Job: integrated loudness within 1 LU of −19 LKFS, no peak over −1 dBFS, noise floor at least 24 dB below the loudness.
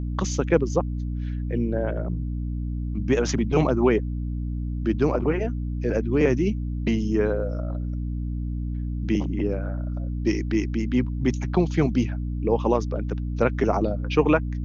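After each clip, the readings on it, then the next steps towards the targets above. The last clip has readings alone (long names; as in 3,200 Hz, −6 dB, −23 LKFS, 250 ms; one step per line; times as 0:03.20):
mains hum 60 Hz; hum harmonics up to 300 Hz; level of the hum −26 dBFS; integrated loudness −25.0 LKFS; sample peak −5.5 dBFS; target loudness −19.0 LKFS
→ mains-hum notches 60/120/180/240/300 Hz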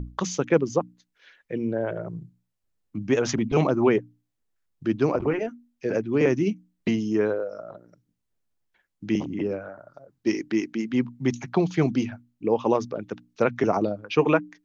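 mains hum none found; integrated loudness −25.5 LKFS; sample peak −6.0 dBFS; target loudness −19.0 LKFS
→ level +6.5 dB
brickwall limiter −1 dBFS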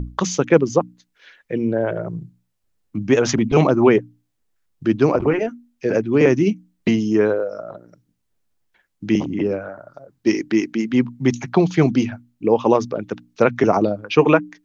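integrated loudness −19.0 LKFS; sample peak −1.0 dBFS; background noise floor −72 dBFS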